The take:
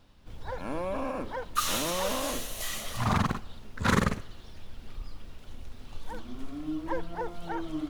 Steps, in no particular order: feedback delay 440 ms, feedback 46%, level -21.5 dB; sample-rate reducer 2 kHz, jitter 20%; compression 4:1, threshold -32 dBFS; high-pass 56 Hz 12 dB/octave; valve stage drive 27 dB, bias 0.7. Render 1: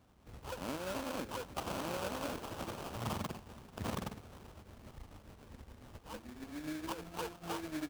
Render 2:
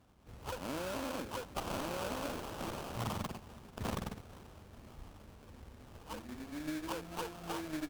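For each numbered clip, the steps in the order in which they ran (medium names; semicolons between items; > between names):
compression > valve stage > feedback delay > sample-rate reducer > high-pass; high-pass > compression > feedback delay > sample-rate reducer > valve stage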